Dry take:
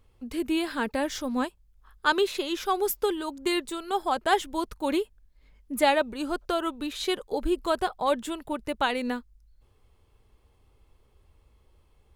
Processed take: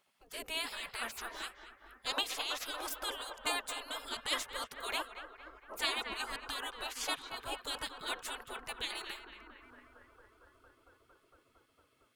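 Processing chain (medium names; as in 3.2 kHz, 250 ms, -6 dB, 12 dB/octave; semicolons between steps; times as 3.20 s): resonant low shelf 240 Hz -6.5 dB, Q 3; band-passed feedback delay 228 ms, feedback 85%, band-pass 880 Hz, level -7 dB; spectral gate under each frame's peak -20 dB weak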